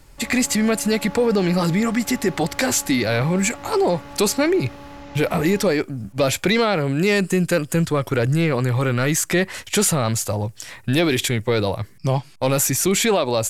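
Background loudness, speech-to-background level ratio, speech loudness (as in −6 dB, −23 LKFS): −38.5 LKFS, 18.0 dB, −20.5 LKFS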